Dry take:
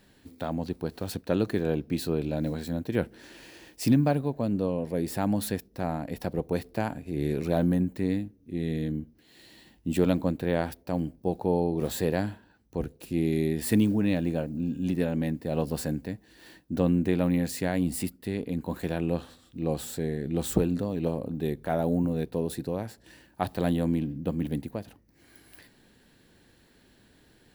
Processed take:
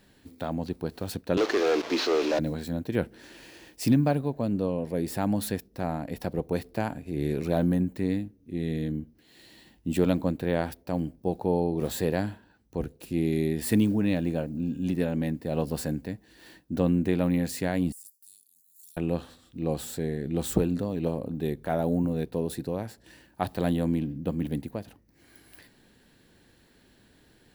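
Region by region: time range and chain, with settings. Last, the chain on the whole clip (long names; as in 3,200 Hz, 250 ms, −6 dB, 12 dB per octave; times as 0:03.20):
0:01.37–0:02.39: linear delta modulator 32 kbit/s, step −38 dBFS + high-pass filter 340 Hz 24 dB per octave + leveller curve on the samples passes 3
0:17.92–0:18.97: inverse Chebyshev high-pass filter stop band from 2,100 Hz, stop band 60 dB + downward compressor 12 to 1, threshold −44 dBFS + transient designer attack −4 dB, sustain +11 dB
whole clip: no processing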